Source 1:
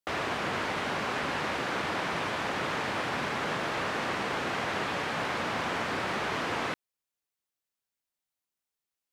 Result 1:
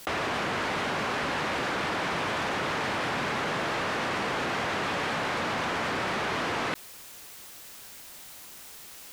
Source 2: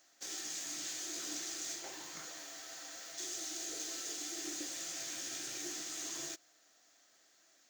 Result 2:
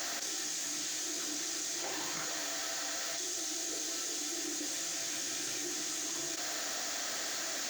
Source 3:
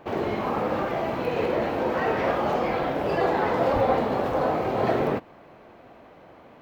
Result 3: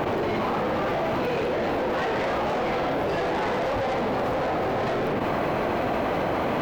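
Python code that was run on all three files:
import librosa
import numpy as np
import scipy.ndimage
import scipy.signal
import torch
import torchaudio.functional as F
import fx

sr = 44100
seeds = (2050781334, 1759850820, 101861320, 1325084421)

y = 10.0 ** (-27.0 / 20.0) * np.tanh(x / 10.0 ** (-27.0 / 20.0))
y = fx.env_flatten(y, sr, amount_pct=100)
y = y * librosa.db_to_amplitude(3.0)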